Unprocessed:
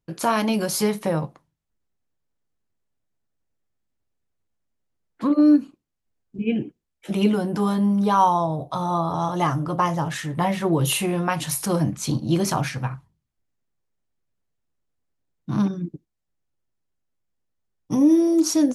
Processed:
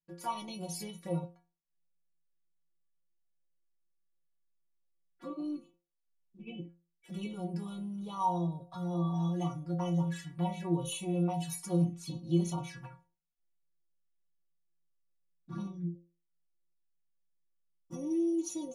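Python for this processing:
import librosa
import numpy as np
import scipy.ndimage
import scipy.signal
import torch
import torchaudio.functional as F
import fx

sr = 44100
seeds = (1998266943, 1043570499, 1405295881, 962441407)

y = fx.env_flanger(x, sr, rest_ms=6.0, full_db=-20.5)
y = fx.stiff_resonator(y, sr, f0_hz=170.0, decay_s=0.36, stiffness=0.008)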